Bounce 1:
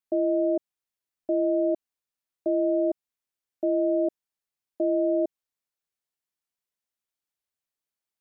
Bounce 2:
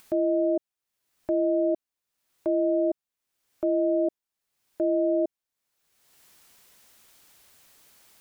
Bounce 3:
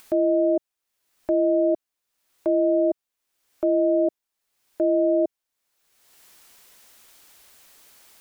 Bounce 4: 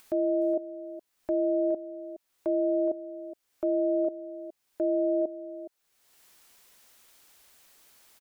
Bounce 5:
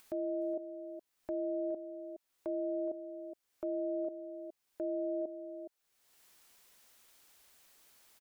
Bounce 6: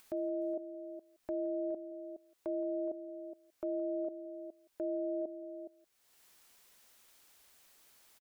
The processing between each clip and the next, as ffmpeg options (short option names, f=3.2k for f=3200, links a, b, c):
-af "acompressor=mode=upward:threshold=-32dB:ratio=2.5"
-af "equalizer=f=130:w=0.91:g=-6.5,volume=4.5dB"
-af "aecho=1:1:417:0.2,volume=-6dB"
-af "alimiter=level_in=0.5dB:limit=-24dB:level=0:latency=1:release=33,volume=-0.5dB,volume=-5dB"
-af "aecho=1:1:170:0.0944"